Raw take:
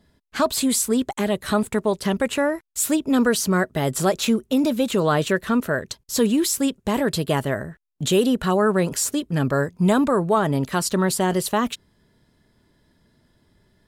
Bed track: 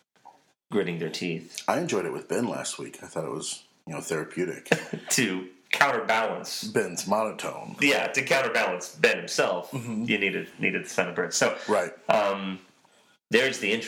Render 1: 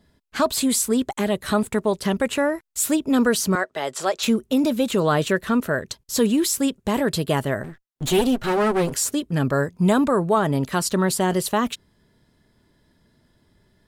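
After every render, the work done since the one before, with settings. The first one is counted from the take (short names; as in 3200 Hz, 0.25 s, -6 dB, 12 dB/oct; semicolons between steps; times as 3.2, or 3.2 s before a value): 3.55–4.23 three-band isolator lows -21 dB, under 410 Hz, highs -15 dB, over 7800 Hz; 7.63–8.94 minimum comb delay 7.7 ms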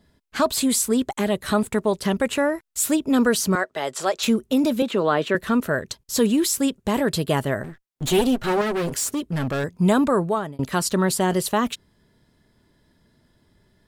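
4.82–5.35 three-band isolator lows -22 dB, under 180 Hz, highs -14 dB, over 4100 Hz; 8.61–9.64 hard clip -21 dBFS; 10.19–10.59 fade out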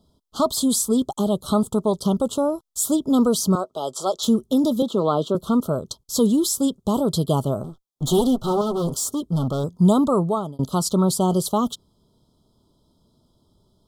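Chebyshev band-stop 1300–3200 Hz, order 4; dynamic EQ 160 Hz, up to +5 dB, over -36 dBFS, Q 1.3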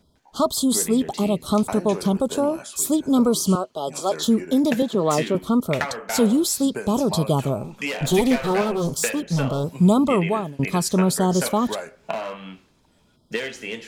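add bed track -6 dB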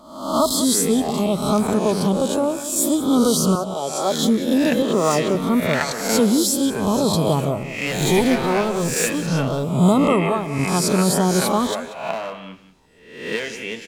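spectral swells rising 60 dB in 0.71 s; outdoor echo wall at 32 m, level -13 dB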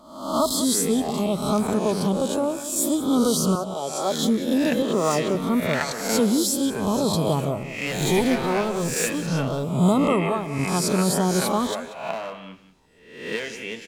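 gain -3.5 dB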